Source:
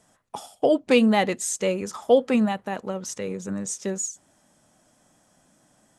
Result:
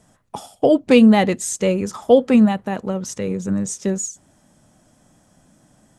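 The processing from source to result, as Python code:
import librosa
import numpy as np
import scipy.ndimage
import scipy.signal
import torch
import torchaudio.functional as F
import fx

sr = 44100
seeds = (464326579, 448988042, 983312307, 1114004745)

y = fx.low_shelf(x, sr, hz=250.0, db=11.0)
y = y * librosa.db_to_amplitude(2.5)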